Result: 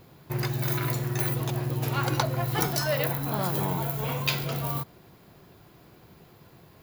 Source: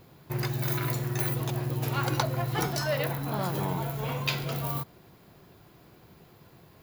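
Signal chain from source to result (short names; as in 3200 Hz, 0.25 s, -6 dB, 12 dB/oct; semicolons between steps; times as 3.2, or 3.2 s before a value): 2.42–4.47 high shelf 9400 Hz +8 dB; gain +1.5 dB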